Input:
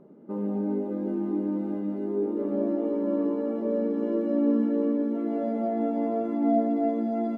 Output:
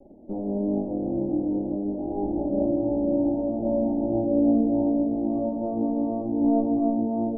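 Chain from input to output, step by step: minimum comb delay 3.4 ms; steep low-pass 780 Hz 48 dB/oct; gain +3.5 dB

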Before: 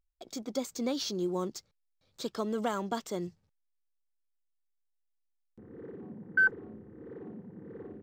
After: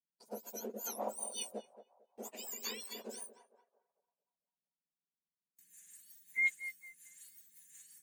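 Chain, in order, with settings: spectrum mirrored in octaves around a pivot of 1800 Hz; gate with hold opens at -52 dBFS; narrowing echo 0.225 s, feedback 45%, band-pass 860 Hz, level -11 dB; rotary speaker horn 5.5 Hz; gain -2 dB

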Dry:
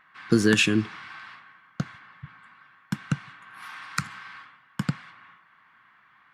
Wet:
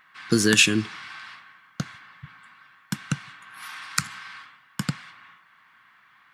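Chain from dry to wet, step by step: high shelf 3100 Hz +12 dB; gain -1 dB

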